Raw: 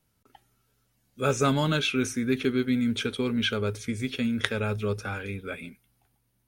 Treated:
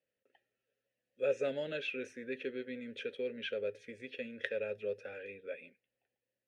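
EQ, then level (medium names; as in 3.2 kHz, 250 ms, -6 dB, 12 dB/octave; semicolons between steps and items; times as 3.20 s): vowel filter e; +1.0 dB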